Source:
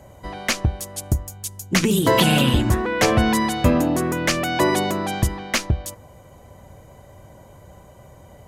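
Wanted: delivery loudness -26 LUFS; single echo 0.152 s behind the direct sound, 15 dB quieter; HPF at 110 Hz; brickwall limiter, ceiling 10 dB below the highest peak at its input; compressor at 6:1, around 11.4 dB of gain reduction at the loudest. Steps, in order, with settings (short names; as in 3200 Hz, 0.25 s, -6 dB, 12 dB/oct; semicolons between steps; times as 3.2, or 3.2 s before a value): HPF 110 Hz; compressor 6:1, threshold -26 dBFS; limiter -22 dBFS; echo 0.152 s -15 dB; gain +6 dB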